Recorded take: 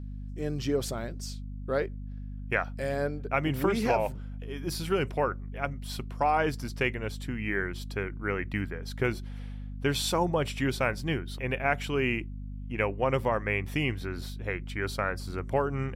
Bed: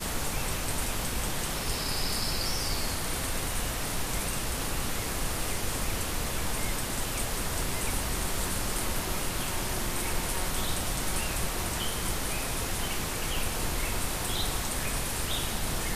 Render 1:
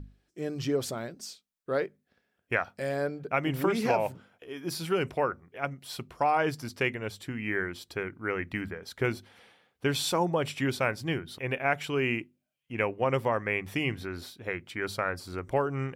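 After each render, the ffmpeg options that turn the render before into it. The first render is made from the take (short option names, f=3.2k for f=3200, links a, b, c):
-af "bandreject=f=50:t=h:w=6,bandreject=f=100:t=h:w=6,bandreject=f=150:t=h:w=6,bandreject=f=200:t=h:w=6,bandreject=f=250:t=h:w=6"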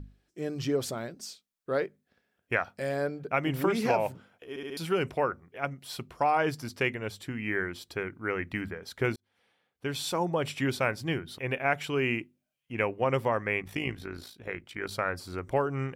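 -filter_complex "[0:a]asettb=1/sr,asplit=3[a][b][c];[a]atrim=end=13.624[d];[b]atrim=start=13.62:end=14.92,asetpts=PTS-STARTPTS,afade=t=in:d=0.004:c=qsin,afade=t=out:st=1.296:d=0.004:c=qsin,tremolo=f=55:d=0.667[e];[c]atrim=start=14.916[f];[d][e]acrossfade=d=0.004:c1=hsin:c2=qsin[g];[g][f]acrossfade=d=0.004:c1=qsin:c2=hsin,asplit=6[h][i][j][k][l][m];[h]atrim=end=4.562[n];[i]atrim=start=4.488:end=4.562[o];[j]atrim=start=4.488:end=4.562[p];[k]atrim=start=4.488:end=4.562[q];[l]atrim=start=4.768:end=9.16,asetpts=PTS-STARTPTS,afade=t=out:st=4.388:d=0.004:c=hsin[r];[m]atrim=start=9.16,asetpts=PTS-STARTPTS,afade=t=in:d=1.36[s];[n][o]acrossfade=d=0.004:c1=hsin:c2=hsin[t];[t][p]acrossfade=d=0.004:c1=hsin:c2=hsin[u];[u][q]acrossfade=d=0.004:c1=hsin:c2=hsin[v];[r][s]concat=n=2:v=0:a=1[w];[v][w]acrossfade=d=0.004:c1=hsin:c2=hsin"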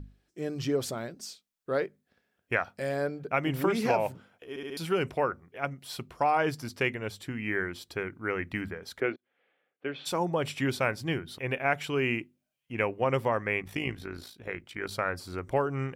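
-filter_complex "[0:a]asplit=3[a][b][c];[a]afade=t=out:st=8.99:d=0.02[d];[b]highpass=f=180:w=0.5412,highpass=f=180:w=1.3066,equalizer=f=210:t=q:w=4:g=-10,equalizer=f=560:t=q:w=4:g=3,equalizer=f=940:t=q:w=4:g=-8,lowpass=f=2.8k:w=0.5412,lowpass=f=2.8k:w=1.3066,afade=t=in:st=8.99:d=0.02,afade=t=out:st=10.05:d=0.02[e];[c]afade=t=in:st=10.05:d=0.02[f];[d][e][f]amix=inputs=3:normalize=0"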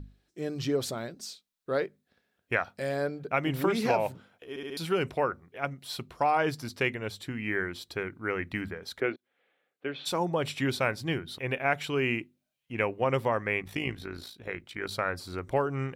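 -af "equalizer=f=3.9k:t=o:w=0.3:g=5.5"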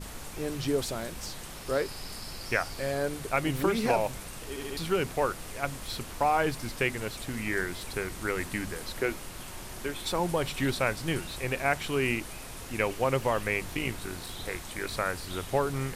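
-filter_complex "[1:a]volume=-10.5dB[a];[0:a][a]amix=inputs=2:normalize=0"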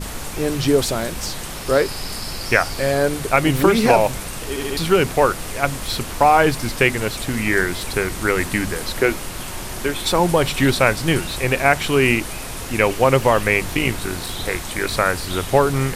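-af "volume=12dB,alimiter=limit=-1dB:level=0:latency=1"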